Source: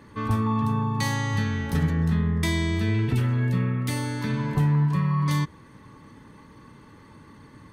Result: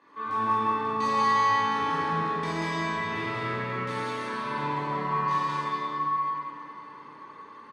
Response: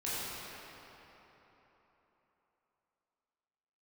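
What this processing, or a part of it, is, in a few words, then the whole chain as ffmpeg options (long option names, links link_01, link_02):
station announcement: -filter_complex "[0:a]highpass=420,lowpass=4800,equalizer=frequency=1100:width_type=o:width=0.33:gain=8,aecho=1:1:125.4|186.6:0.355|0.891[link_01];[1:a]atrim=start_sample=2205[link_02];[link_01][link_02]afir=irnorm=-1:irlink=0,volume=-6dB"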